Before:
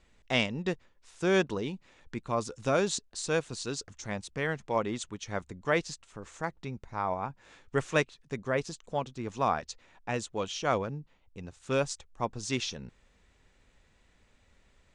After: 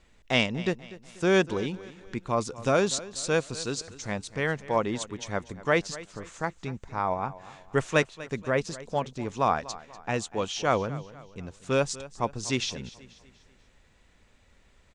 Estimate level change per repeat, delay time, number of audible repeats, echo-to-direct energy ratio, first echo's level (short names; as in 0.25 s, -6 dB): -7.5 dB, 0.243 s, 3, -16.5 dB, -17.5 dB